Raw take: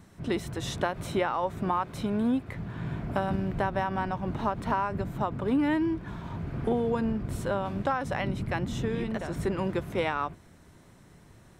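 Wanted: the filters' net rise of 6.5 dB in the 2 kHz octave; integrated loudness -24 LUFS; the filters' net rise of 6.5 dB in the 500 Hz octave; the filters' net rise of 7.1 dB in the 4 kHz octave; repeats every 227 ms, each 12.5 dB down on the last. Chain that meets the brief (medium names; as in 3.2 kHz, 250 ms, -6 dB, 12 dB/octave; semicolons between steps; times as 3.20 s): peaking EQ 500 Hz +7.5 dB; peaking EQ 2 kHz +6.5 dB; peaking EQ 4 kHz +6.5 dB; feedback delay 227 ms, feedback 24%, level -12.5 dB; trim +2 dB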